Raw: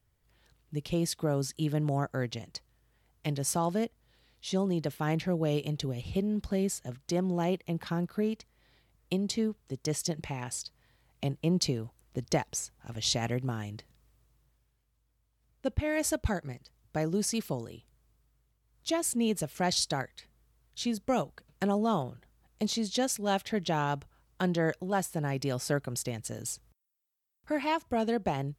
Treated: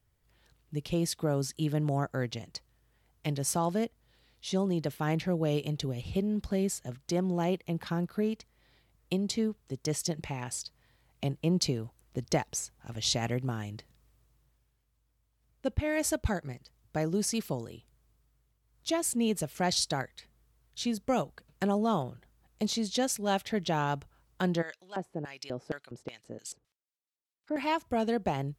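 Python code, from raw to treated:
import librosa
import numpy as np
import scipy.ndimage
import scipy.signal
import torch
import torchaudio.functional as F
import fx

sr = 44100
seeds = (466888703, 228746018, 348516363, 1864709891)

y = fx.filter_lfo_bandpass(x, sr, shape='square', hz=fx.line((24.61, 1.3), (27.56, 7.0)), low_hz=370.0, high_hz=3800.0, q=0.93, at=(24.61, 27.56), fade=0.02)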